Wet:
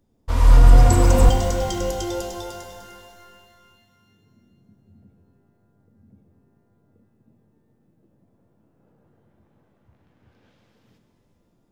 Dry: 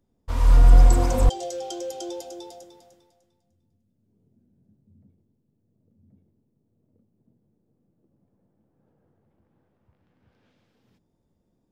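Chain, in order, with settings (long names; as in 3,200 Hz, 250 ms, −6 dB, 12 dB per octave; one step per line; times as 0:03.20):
reverb with rising layers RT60 2.4 s, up +12 semitones, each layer −8 dB, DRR 6 dB
level +5 dB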